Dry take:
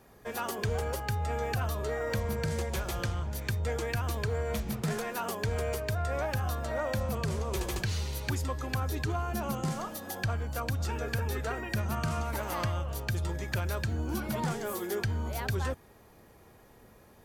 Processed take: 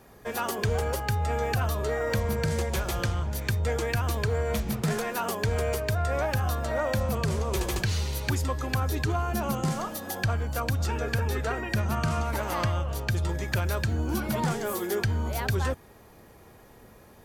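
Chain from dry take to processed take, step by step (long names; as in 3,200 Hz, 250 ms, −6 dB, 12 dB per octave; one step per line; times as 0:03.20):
0:10.86–0:13.29: high-shelf EQ 11,000 Hz −6.5 dB
level +4.5 dB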